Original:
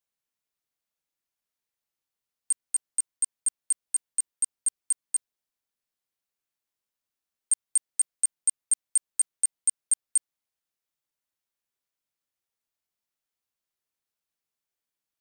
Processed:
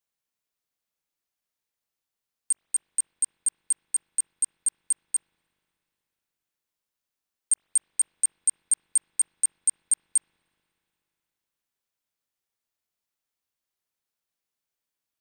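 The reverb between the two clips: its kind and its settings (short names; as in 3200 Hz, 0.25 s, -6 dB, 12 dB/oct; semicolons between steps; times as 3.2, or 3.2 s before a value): spring tank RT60 3.4 s, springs 42/60 ms, chirp 60 ms, DRR 15 dB; gain +1 dB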